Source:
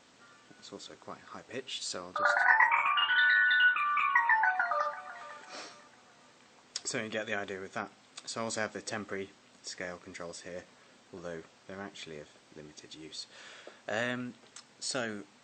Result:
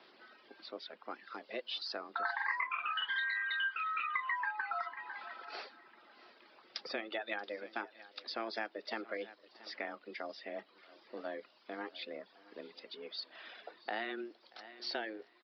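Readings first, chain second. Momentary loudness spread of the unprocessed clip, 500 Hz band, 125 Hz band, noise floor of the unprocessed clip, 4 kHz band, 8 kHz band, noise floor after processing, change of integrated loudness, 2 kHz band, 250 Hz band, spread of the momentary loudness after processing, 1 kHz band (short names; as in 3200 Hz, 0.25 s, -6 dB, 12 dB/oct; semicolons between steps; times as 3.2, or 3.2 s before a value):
23 LU, -4.5 dB, under -20 dB, -61 dBFS, -4.5 dB, under -25 dB, -66 dBFS, -10.0 dB, -9.5 dB, -5.5 dB, 18 LU, -8.5 dB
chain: reverb removal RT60 1 s; frequency shift +110 Hz; echo 0.677 s -21.5 dB; downsampling 11025 Hz; compressor 3:1, threshold -37 dBFS, peak gain reduction 13 dB; on a send: thinning echo 0.632 s, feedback 52%, high-pass 420 Hz, level -24 dB; on the sum: gain +1 dB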